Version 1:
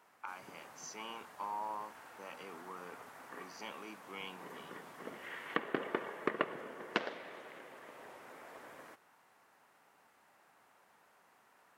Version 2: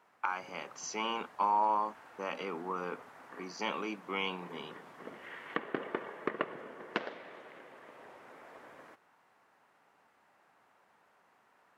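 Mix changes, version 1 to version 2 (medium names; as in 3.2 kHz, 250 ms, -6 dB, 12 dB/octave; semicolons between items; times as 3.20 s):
speech +12.0 dB; master: add low-pass 3.6 kHz 6 dB/octave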